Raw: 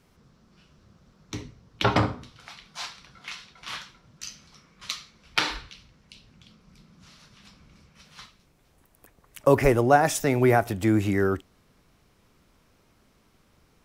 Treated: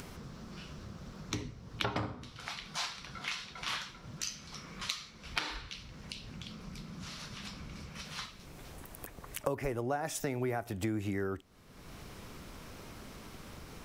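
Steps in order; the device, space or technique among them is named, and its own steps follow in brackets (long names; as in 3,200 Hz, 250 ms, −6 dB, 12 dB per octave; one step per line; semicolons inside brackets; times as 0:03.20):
upward and downward compression (upward compression, threshold −39 dBFS; downward compressor 6 to 1, threshold −35 dBFS, peak gain reduction 21 dB)
level +2.5 dB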